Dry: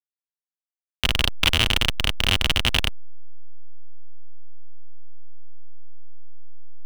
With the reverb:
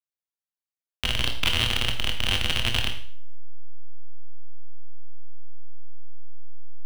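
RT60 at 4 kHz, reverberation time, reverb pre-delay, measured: 0.50 s, 0.50 s, 18 ms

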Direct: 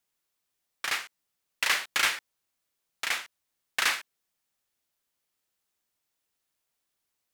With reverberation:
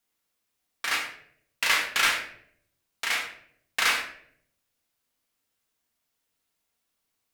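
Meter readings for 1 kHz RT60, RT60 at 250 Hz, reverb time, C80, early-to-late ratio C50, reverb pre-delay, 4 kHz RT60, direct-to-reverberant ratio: 0.55 s, 0.85 s, 0.65 s, 10.0 dB, 6.5 dB, 4 ms, 0.45 s, -0.5 dB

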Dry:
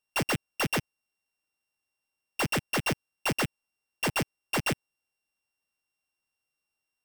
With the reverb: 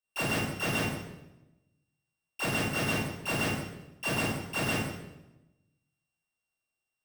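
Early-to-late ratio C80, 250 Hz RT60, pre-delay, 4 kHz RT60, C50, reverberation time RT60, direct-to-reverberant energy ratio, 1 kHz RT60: 3.0 dB, 1.2 s, 19 ms, 0.80 s, -0.5 dB, 0.95 s, -9.0 dB, 0.85 s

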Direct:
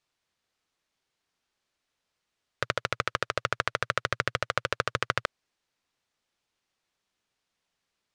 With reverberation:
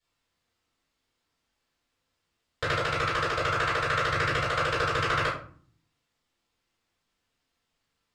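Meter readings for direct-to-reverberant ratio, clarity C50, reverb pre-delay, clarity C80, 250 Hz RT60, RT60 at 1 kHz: -11.0 dB, 4.5 dB, 3 ms, 9.5 dB, 0.85 s, 0.45 s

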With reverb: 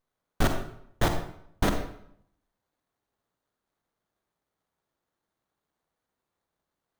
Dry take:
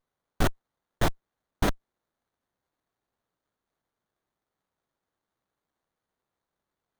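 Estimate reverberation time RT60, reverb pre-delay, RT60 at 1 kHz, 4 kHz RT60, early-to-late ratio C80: 0.70 s, 38 ms, 0.70 s, 0.55 s, 9.0 dB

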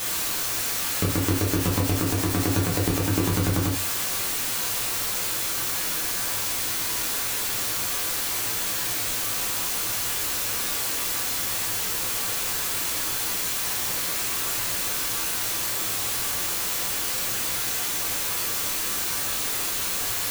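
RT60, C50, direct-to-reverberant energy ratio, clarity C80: no single decay rate, 6.5 dB, -3.5 dB, 11.0 dB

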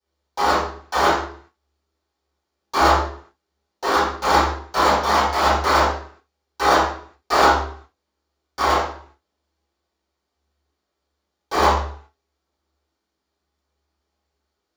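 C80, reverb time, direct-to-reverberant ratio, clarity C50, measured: 5.5 dB, 0.60 s, -20.0 dB, -0.5 dB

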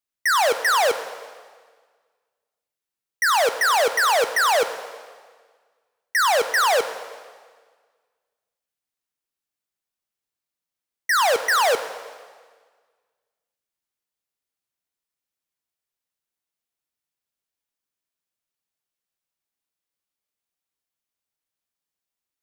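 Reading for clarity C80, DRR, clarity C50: 12.5 dB, 9.5 dB, 11.0 dB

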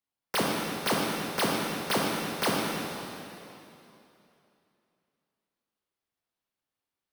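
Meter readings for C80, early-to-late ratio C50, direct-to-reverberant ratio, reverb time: -0.5 dB, -2.0 dB, -4.0 dB, 2.9 s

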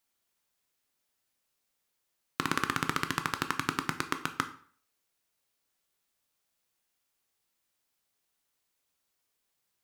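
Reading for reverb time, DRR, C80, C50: 0.50 s, 8.0 dB, 17.0 dB, 13.5 dB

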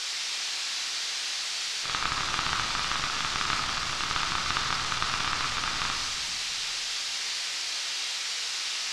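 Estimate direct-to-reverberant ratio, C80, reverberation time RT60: -0.5 dB, 5.0 dB, 1.8 s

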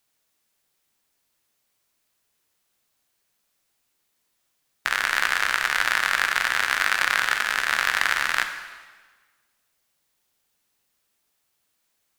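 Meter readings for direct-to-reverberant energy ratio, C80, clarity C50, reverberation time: 6.0 dB, 10.0 dB, 8.5 dB, 1.4 s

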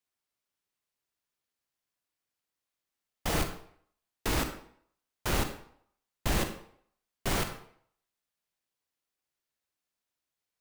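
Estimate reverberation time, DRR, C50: 0.65 s, 6.5 dB, 8.5 dB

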